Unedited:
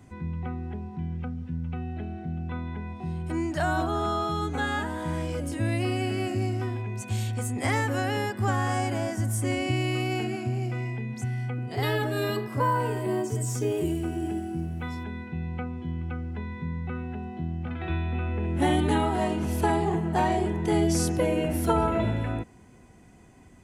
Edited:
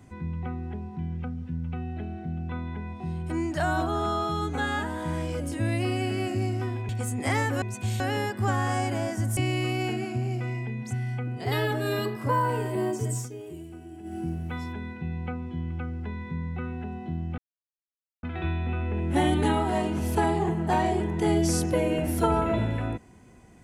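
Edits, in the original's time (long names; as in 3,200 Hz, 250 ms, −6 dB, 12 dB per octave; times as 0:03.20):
0:06.89–0:07.27: move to 0:08.00
0:09.37–0:09.68: remove
0:13.47–0:14.48: duck −13 dB, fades 0.14 s
0:17.69: splice in silence 0.85 s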